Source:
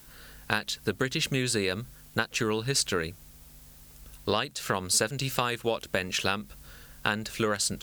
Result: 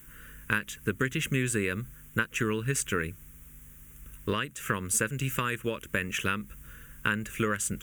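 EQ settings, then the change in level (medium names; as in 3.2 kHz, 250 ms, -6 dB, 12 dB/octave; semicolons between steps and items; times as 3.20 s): static phaser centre 1.8 kHz, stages 4; band-stop 5.2 kHz, Q 6.8; +2.0 dB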